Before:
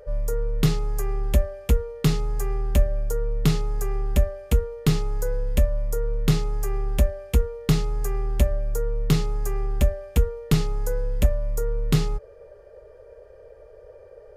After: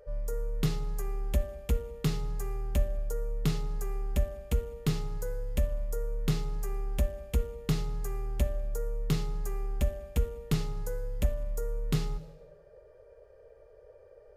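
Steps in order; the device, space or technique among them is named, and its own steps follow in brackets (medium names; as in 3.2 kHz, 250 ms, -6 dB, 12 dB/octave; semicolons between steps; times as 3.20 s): saturated reverb return (on a send at -12 dB: reverberation RT60 0.95 s, pre-delay 35 ms + saturation -15.5 dBFS, distortion -16 dB); on the sum: trim -8.5 dB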